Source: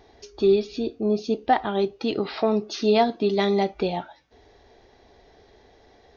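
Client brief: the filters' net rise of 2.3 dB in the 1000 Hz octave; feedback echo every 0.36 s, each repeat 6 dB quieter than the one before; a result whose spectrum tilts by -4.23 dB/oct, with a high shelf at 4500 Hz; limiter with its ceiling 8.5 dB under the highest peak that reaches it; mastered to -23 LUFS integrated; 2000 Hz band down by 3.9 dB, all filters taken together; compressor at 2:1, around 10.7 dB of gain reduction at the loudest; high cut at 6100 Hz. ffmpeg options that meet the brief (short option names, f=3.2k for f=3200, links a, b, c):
-af "lowpass=6.1k,equalizer=f=1k:t=o:g=4.5,equalizer=f=2k:t=o:g=-7,highshelf=f=4.5k:g=5.5,acompressor=threshold=-33dB:ratio=2,alimiter=level_in=1.5dB:limit=-24dB:level=0:latency=1,volume=-1.5dB,aecho=1:1:360|720|1080|1440|1800|2160:0.501|0.251|0.125|0.0626|0.0313|0.0157,volume=11.5dB"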